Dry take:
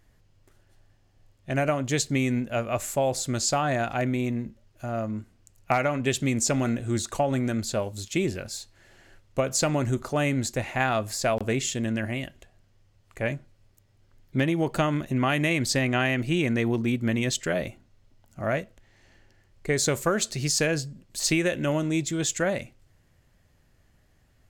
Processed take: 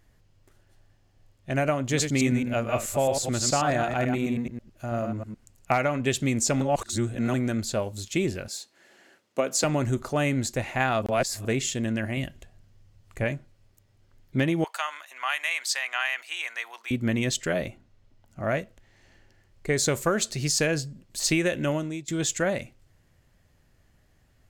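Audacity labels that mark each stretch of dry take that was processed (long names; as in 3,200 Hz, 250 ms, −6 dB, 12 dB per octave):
1.780000	5.740000	delay that plays each chunk backwards 108 ms, level −5.5 dB
6.610000	7.340000	reverse
8.480000	9.640000	high-pass filter 200 Hz 24 dB per octave
11.020000	11.450000	reverse
12.170000	13.240000	bass and treble bass +6 dB, treble +2 dB
14.640000	16.910000	high-pass filter 910 Hz 24 dB per octave
17.670000	18.480000	high-shelf EQ 6,100 Hz −6.5 dB
21.670000	22.080000	fade out, to −19.5 dB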